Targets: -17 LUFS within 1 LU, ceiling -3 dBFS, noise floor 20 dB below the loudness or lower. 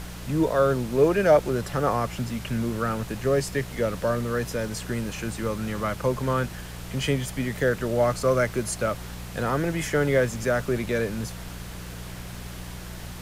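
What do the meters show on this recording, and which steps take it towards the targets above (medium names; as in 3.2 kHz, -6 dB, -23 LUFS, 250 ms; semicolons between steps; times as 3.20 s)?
hum 60 Hz; highest harmonic 180 Hz; hum level -36 dBFS; noise floor -38 dBFS; noise floor target -46 dBFS; loudness -25.5 LUFS; peak level -7.0 dBFS; loudness target -17.0 LUFS
-> de-hum 60 Hz, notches 3; noise print and reduce 8 dB; trim +8.5 dB; peak limiter -3 dBFS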